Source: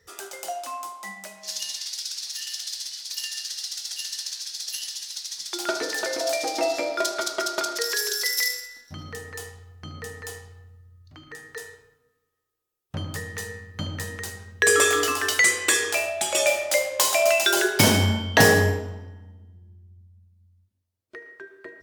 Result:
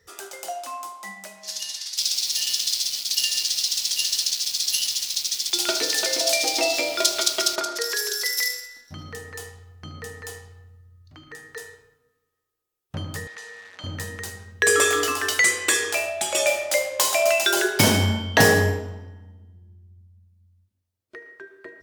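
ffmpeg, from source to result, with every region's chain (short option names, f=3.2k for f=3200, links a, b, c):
-filter_complex "[0:a]asettb=1/sr,asplit=3[a][b][c];[a]atrim=end=1.974[d];[b]atrim=start=1.97:end=7.56,asetpts=PTS-STARTPTS,afade=t=in:d=0.004:c=qsin,afade=t=out:st=5.586:d=0.004:c=qsin,aeval=exprs='val(0)*gte(abs(val(0)),0.015)':c=same,highshelf=f=2.1k:t=q:w=1.5:g=8[e];[c]atrim=start=7.556[f];[d][e]acrossfade=d=0.004:c1=hsin:c2=qsin[g];[g][f]acrossfade=d=0.004:c1=qsin:c2=hsin,asettb=1/sr,asplit=3[h][i][j];[h]atrim=end=13.274[k];[i]atrim=start=13.27:end=13.84,asetpts=PTS-STARTPTS,afade=t=in:d=0.004:c=qsin,afade=t=out:st=0.566:d=0.004:c=qsin,aeval=exprs='val(0)+0.5*0.0126*sgn(val(0))':c=same,highpass=640,lowpass=6.2k,acompressor=threshold=-40dB:ratio=2:attack=3.2:release=140:knee=1:detection=peak[l];[j]atrim=start=13.836[m];[k][l]acrossfade=d=0.004:c1=hsin:c2=qsin[n];[n][m]acrossfade=d=0.004:c1=qsin:c2=hsin"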